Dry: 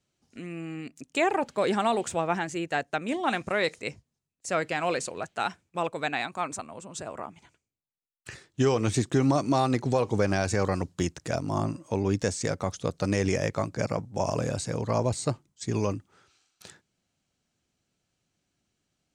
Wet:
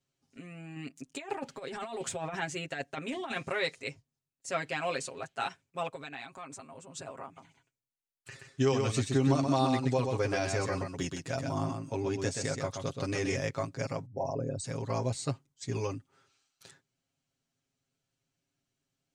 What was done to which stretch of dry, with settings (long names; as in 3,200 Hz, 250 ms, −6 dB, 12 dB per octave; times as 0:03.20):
0:00.76–0:03.53: compressor whose output falls as the input rises −29 dBFS, ratio −0.5
0:05.95–0:06.62: downward compressor 2.5 to 1, threshold −37 dBFS
0:07.24–0:13.39: single-tap delay 127 ms −5 dB
0:14.06–0:14.64: spectral envelope exaggerated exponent 2
whole clip: dynamic equaliser 3,200 Hz, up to +4 dB, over −44 dBFS, Q 0.73; comb filter 7.4 ms, depth 84%; level −8.5 dB